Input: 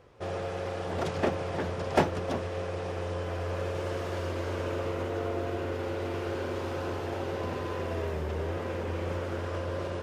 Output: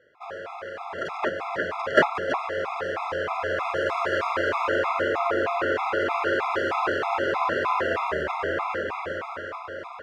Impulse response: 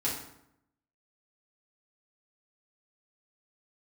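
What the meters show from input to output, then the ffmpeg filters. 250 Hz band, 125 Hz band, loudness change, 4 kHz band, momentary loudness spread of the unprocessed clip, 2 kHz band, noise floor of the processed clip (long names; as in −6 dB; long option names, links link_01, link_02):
+0.5 dB, −9.5 dB, +7.0 dB, +6.5 dB, 5 LU, +13.5 dB, −38 dBFS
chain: -af "dynaudnorm=framelen=220:gausssize=13:maxgain=12dB,bandpass=frequency=1400:width_type=q:width=1.2:csg=0,afftfilt=real='re*gt(sin(2*PI*3.2*pts/sr)*(1-2*mod(floor(b*sr/1024/680),2)),0)':imag='im*gt(sin(2*PI*3.2*pts/sr)*(1-2*mod(floor(b*sr/1024/680),2)),0)':win_size=1024:overlap=0.75,volume=8dB"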